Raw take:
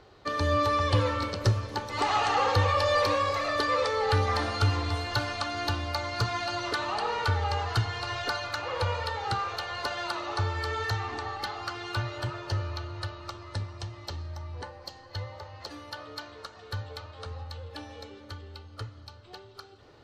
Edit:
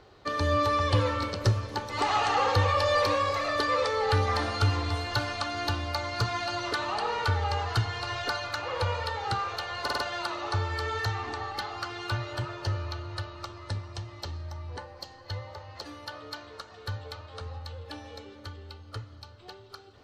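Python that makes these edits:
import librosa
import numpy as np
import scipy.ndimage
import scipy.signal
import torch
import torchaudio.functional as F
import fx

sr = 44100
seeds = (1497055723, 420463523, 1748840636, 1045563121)

y = fx.edit(x, sr, fx.stutter(start_s=9.83, slice_s=0.05, count=4), tone=tone)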